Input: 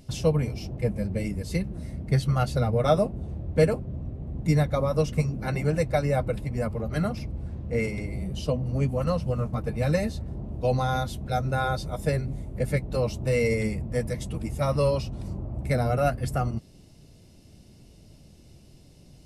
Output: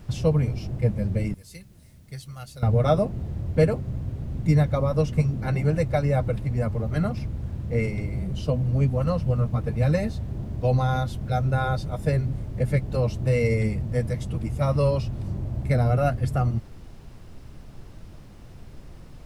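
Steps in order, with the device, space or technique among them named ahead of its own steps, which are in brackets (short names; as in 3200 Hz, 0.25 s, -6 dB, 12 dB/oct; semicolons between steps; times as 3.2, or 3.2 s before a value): car interior (bell 110 Hz +7 dB 0.82 oct; high shelf 4800 Hz -6.5 dB; brown noise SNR 18 dB); 1.34–2.63 pre-emphasis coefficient 0.9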